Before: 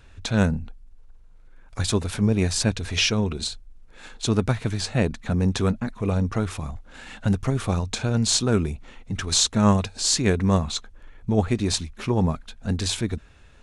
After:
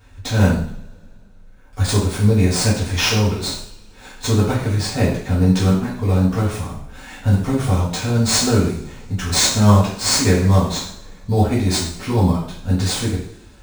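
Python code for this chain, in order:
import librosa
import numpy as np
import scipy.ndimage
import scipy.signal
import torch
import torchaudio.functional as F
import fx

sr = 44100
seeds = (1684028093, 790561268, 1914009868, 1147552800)

p1 = scipy.ndimage.median_filter(x, 3, mode='constant')
p2 = fx.high_shelf(p1, sr, hz=7900.0, db=8.5)
p3 = fx.sample_hold(p2, sr, seeds[0], rate_hz=4300.0, jitter_pct=0)
p4 = p2 + F.gain(torch.from_numpy(p3), -7.0).numpy()
p5 = fx.rev_double_slope(p4, sr, seeds[1], early_s=0.58, late_s=2.7, knee_db=-27, drr_db=-8.0)
p6 = fx.end_taper(p5, sr, db_per_s=290.0)
y = F.gain(torch.from_numpy(p6), -6.0).numpy()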